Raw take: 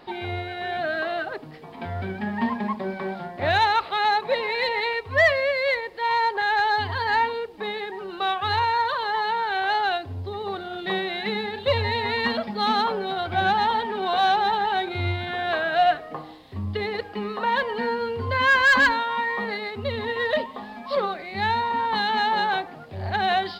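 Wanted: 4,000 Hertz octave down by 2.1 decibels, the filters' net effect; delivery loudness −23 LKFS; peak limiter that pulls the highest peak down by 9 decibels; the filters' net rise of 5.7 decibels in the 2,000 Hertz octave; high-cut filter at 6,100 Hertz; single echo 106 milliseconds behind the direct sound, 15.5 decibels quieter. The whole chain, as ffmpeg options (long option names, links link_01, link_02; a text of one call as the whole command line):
ffmpeg -i in.wav -af "lowpass=6100,equalizer=frequency=2000:width_type=o:gain=8,equalizer=frequency=4000:width_type=o:gain=-5,alimiter=limit=-13.5dB:level=0:latency=1,aecho=1:1:106:0.168" out.wav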